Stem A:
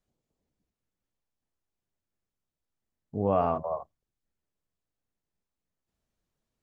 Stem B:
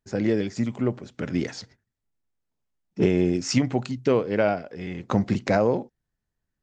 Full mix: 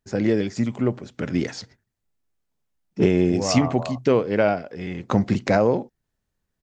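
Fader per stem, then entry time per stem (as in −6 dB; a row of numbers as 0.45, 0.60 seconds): −1.0, +2.5 decibels; 0.15, 0.00 seconds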